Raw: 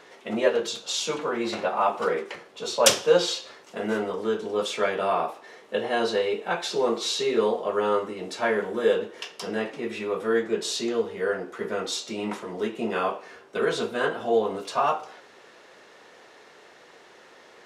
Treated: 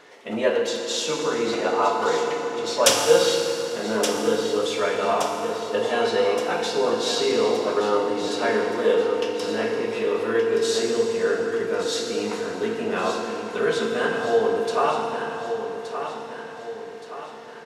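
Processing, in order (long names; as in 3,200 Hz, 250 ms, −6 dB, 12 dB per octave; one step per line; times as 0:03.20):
repeating echo 1,172 ms, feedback 48%, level −9 dB
feedback delay network reverb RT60 3.3 s, high-frequency decay 0.8×, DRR 1.5 dB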